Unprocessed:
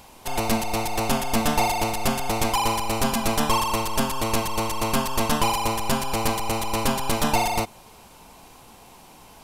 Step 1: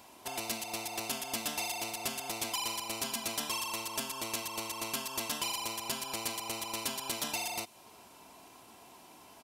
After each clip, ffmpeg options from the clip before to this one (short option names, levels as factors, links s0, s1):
-filter_complex "[0:a]highpass=130,aecho=1:1:3:0.38,acrossover=split=2300[s0][s1];[s0]acompressor=threshold=0.0224:ratio=6[s2];[s2][s1]amix=inputs=2:normalize=0,volume=0.447"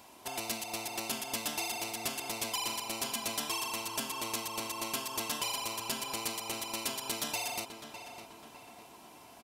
-filter_complex "[0:a]asplit=2[s0][s1];[s1]adelay=605,lowpass=f=2900:p=1,volume=0.376,asplit=2[s2][s3];[s3]adelay=605,lowpass=f=2900:p=1,volume=0.51,asplit=2[s4][s5];[s5]adelay=605,lowpass=f=2900:p=1,volume=0.51,asplit=2[s6][s7];[s7]adelay=605,lowpass=f=2900:p=1,volume=0.51,asplit=2[s8][s9];[s9]adelay=605,lowpass=f=2900:p=1,volume=0.51,asplit=2[s10][s11];[s11]adelay=605,lowpass=f=2900:p=1,volume=0.51[s12];[s0][s2][s4][s6][s8][s10][s12]amix=inputs=7:normalize=0"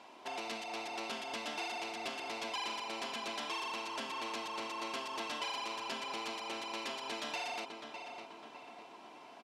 -af "aeval=exprs='clip(val(0),-1,0.00944)':c=same,highpass=270,lowpass=3700,volume=1.19"